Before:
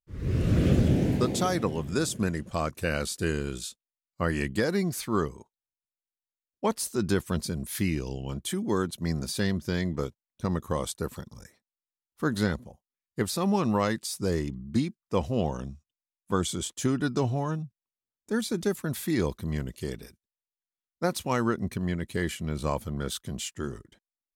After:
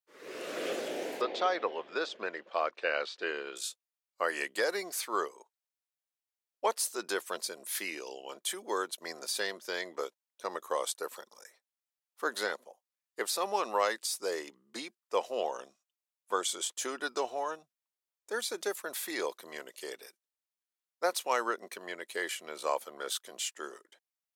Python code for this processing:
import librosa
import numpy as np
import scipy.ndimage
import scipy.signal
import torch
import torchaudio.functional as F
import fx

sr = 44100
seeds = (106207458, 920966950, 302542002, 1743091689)

y = fx.lowpass(x, sr, hz=4000.0, slope=24, at=(1.21, 3.56))
y = scipy.signal.sosfilt(scipy.signal.butter(4, 470.0, 'highpass', fs=sr, output='sos'), y)